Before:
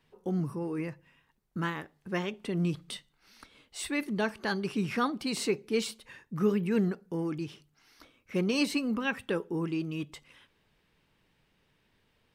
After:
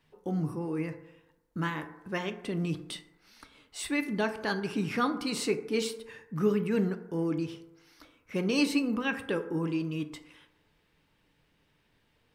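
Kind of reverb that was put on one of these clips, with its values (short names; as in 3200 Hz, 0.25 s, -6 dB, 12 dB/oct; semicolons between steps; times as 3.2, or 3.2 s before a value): FDN reverb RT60 1 s, low-frequency decay 0.8×, high-frequency decay 0.35×, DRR 8 dB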